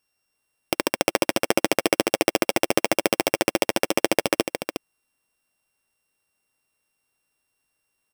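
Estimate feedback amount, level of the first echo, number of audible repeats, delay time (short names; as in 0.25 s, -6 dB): no steady repeat, -7.5 dB, 1, 0.362 s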